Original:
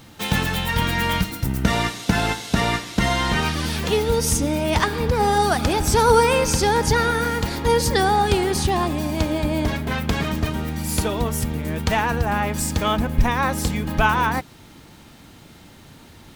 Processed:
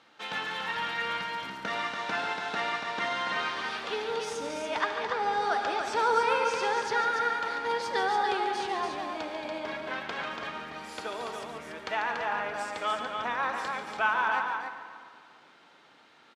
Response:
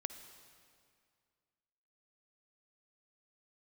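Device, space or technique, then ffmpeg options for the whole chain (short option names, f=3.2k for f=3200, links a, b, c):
station announcement: -filter_complex "[0:a]highpass=490,lowpass=3.9k,equalizer=f=1.4k:t=o:w=0.48:g=4.5,aecho=1:1:142.9|285.7:0.355|0.562[a];[1:a]atrim=start_sample=2205[b];[a][b]afir=irnorm=-1:irlink=0,asettb=1/sr,asplit=3[c][d][e];[c]atrim=end=4.814[f];[d]atrim=start=4.81:end=5.85,asetpts=PTS-STARTPTS,afade=t=in:d=0.004:c=qsin,afade=t=out:st=1.036:d=0.004:c=qsin,lowpass=f=9.4k:w=0.5412,lowpass=f=9.4k:w=1.3066[g];[e]atrim=start=5.846[h];[f][g]acrossfade=d=0.004:c1=hsin:c2=qsin[i];[i][h]acrossfade=d=0.004:c1=qsin:c2=hsin,volume=-7.5dB"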